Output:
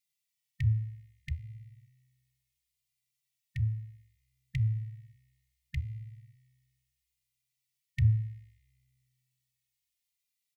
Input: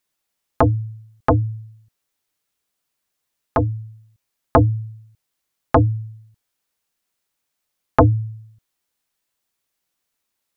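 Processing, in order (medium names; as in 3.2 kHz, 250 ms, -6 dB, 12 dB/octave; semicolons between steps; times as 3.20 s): brick-wall FIR band-stop 180–1800 Hz; bass shelf 76 Hz -9 dB; feedback comb 64 Hz, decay 2 s, harmonics all, mix 50%; endless flanger 2.5 ms -0.68 Hz; trim +1.5 dB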